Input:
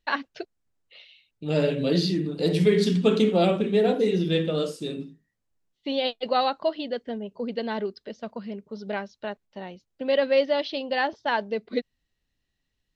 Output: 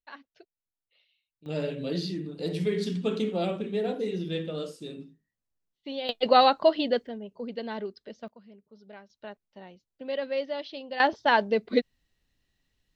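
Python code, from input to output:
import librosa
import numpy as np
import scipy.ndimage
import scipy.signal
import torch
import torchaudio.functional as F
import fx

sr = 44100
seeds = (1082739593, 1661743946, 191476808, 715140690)

y = fx.gain(x, sr, db=fx.steps((0.0, -19.0), (1.46, -8.0), (6.09, 4.5), (7.07, -5.5), (8.28, -17.0), (9.1, -9.0), (11.0, 3.5)))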